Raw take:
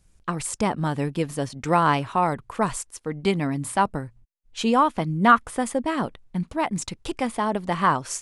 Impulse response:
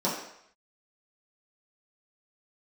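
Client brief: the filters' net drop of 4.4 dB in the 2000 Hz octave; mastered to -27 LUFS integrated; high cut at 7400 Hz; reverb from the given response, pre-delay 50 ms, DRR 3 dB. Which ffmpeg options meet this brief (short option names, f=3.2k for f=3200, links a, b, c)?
-filter_complex "[0:a]lowpass=7.4k,equalizer=f=2k:t=o:g=-6.5,asplit=2[a][b];[1:a]atrim=start_sample=2205,adelay=50[c];[b][c]afir=irnorm=-1:irlink=0,volume=-14dB[d];[a][d]amix=inputs=2:normalize=0,volume=-5dB"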